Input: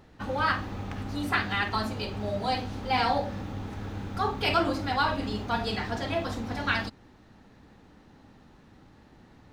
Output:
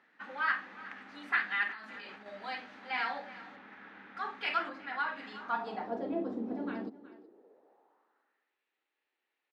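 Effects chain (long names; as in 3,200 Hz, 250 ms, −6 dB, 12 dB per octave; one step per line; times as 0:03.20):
0:01.69–0:02.26: compressor whose output falls as the input rises −36 dBFS, ratio −1
0:03.56–0:04.17: low-pass filter 3,800 Hz 12 dB per octave
single-tap delay 369 ms −17.5 dB
high-pass filter sweep 220 Hz → 2,500 Hz, 0:06.97–0:08.59
0:04.68–0:05.15: high-shelf EQ 2,500 Hz → 4,100 Hz −11.5 dB
band-pass filter sweep 1,800 Hz → 390 Hz, 0:05.34–0:06.10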